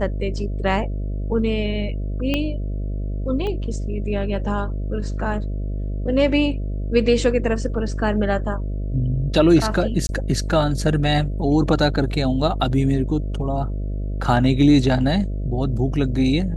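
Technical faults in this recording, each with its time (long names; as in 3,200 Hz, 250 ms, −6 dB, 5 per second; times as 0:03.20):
mains buzz 50 Hz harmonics 13 −25 dBFS
0:02.34: click −9 dBFS
0:03.47: click −17 dBFS
0:10.07–0:10.09: drop-out 20 ms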